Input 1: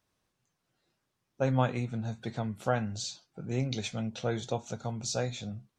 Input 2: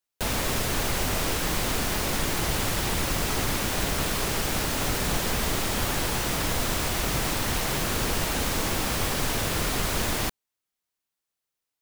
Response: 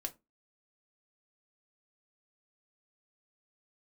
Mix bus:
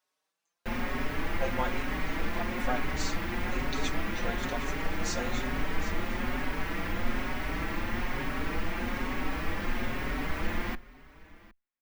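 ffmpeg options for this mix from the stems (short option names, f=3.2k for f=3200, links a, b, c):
-filter_complex "[0:a]highpass=530,volume=1.5dB,asplit=2[a][b];[b]volume=-13dB[c];[1:a]equalizer=f=125:t=o:w=1:g=-4,equalizer=f=250:t=o:w=1:g=9,equalizer=f=1k:t=o:w=1:g=3,equalizer=f=2k:t=o:w=1:g=9,equalizer=f=4k:t=o:w=1:g=-4,equalizer=f=8k:t=o:w=1:g=-11,equalizer=f=16k:t=o:w=1:g=-10,adelay=450,volume=-9.5dB,asplit=3[d][e][f];[e]volume=-9dB[g];[f]volume=-19dB[h];[2:a]atrim=start_sample=2205[i];[g][i]afir=irnorm=-1:irlink=0[j];[c][h]amix=inputs=2:normalize=0,aecho=0:1:761:1[k];[a][d][j][k]amix=inputs=4:normalize=0,lowshelf=f=69:g=11,asplit=2[l][m];[m]adelay=5,afreqshift=1.1[n];[l][n]amix=inputs=2:normalize=1"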